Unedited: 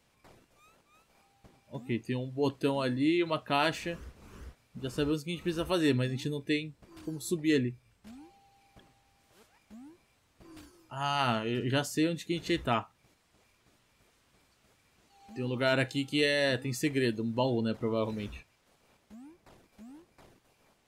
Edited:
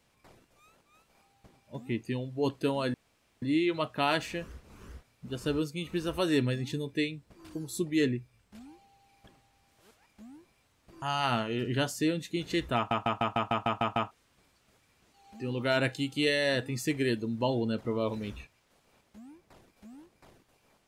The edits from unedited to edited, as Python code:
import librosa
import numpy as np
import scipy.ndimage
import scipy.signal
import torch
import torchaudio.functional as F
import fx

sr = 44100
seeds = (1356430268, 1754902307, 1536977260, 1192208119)

y = fx.edit(x, sr, fx.insert_room_tone(at_s=2.94, length_s=0.48),
    fx.cut(start_s=10.54, length_s=0.44),
    fx.stutter_over(start_s=12.72, slice_s=0.15, count=9), tone=tone)